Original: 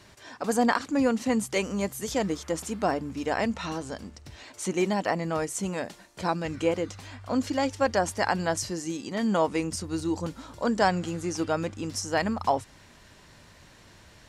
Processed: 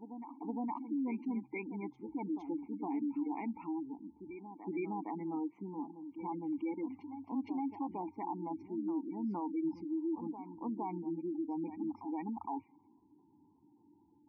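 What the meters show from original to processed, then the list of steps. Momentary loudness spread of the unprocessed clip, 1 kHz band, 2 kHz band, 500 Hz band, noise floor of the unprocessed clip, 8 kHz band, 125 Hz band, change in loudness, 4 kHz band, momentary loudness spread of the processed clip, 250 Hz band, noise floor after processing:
10 LU, −12.5 dB, −22.0 dB, −17.0 dB, −54 dBFS, below −40 dB, −16.5 dB, −11.5 dB, below −35 dB, 7 LU, −7.0 dB, −67 dBFS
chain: formant filter u
low-pass that shuts in the quiet parts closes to 690 Hz, open at −31 dBFS
gate on every frequency bin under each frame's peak −20 dB strong
brickwall limiter −33 dBFS, peak gain reduction 9.5 dB
backwards echo 463 ms −10 dB
level +2.5 dB

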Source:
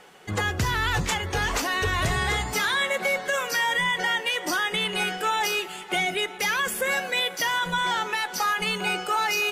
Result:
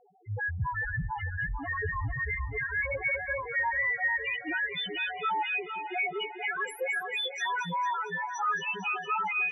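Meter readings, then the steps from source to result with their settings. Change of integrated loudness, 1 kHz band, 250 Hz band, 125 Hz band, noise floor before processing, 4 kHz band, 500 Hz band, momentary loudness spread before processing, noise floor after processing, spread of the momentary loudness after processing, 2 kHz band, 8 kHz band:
−6.0 dB, −5.5 dB, −9.5 dB, −5.0 dB, −39 dBFS, −12.0 dB, −8.5 dB, 3 LU, −42 dBFS, 6 LU, −4.5 dB, below −15 dB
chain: spectral peaks only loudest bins 1
echo with a time of its own for lows and highs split 2,300 Hz, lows 446 ms, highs 227 ms, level −8.5 dB
level +2.5 dB

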